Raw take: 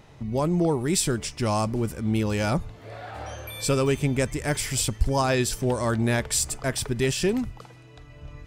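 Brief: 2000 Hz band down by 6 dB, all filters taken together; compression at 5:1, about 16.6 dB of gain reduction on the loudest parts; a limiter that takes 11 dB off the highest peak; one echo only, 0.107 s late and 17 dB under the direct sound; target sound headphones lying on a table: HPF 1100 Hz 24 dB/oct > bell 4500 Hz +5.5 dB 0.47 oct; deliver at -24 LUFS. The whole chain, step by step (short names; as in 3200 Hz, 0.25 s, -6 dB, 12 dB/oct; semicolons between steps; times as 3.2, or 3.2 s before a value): bell 2000 Hz -8 dB; compressor 5:1, threshold -35 dBFS; limiter -34.5 dBFS; HPF 1100 Hz 24 dB/oct; bell 4500 Hz +5.5 dB 0.47 oct; echo 0.107 s -17 dB; gain +23.5 dB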